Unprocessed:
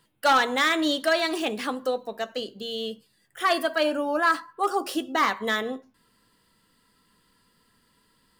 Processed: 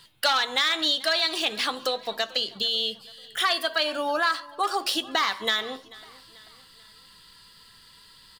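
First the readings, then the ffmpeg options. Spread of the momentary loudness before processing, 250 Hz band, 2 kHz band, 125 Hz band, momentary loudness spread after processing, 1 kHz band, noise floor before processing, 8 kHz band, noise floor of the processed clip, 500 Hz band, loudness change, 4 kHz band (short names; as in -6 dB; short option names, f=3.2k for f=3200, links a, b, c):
11 LU, -8.0 dB, -1.0 dB, n/a, 7 LU, -2.5 dB, -67 dBFS, +2.5 dB, -53 dBFS, -4.0 dB, +0.5 dB, +7.0 dB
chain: -filter_complex "[0:a]equalizer=f=250:t=o:w=1:g=-10,equalizer=f=500:t=o:w=1:g=-4,equalizer=f=4k:t=o:w=1:g=11,acompressor=threshold=-34dB:ratio=3,asplit=2[a][b];[b]aecho=0:1:439|878|1317:0.0794|0.0397|0.0199[c];[a][c]amix=inputs=2:normalize=0,volume=9dB"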